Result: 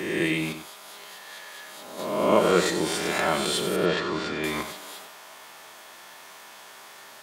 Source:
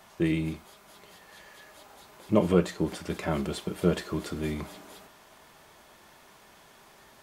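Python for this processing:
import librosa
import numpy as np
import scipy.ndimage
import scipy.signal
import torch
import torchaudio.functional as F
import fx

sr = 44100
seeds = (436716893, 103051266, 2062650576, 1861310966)

p1 = fx.spec_swells(x, sr, rise_s=1.03)
p2 = fx.highpass(p1, sr, hz=840.0, slope=6)
p3 = fx.level_steps(p2, sr, step_db=22)
p4 = p2 + F.gain(torch.from_numpy(p3), -0.5).numpy()
p5 = fx.air_absorb(p4, sr, metres=160.0, at=(3.76, 4.44))
p6 = p5 + 10.0 ** (-10.0 / 20.0) * np.pad(p5, (int(93 * sr / 1000.0), 0))[:len(p5)]
y = F.gain(torch.from_numpy(p6), 6.0).numpy()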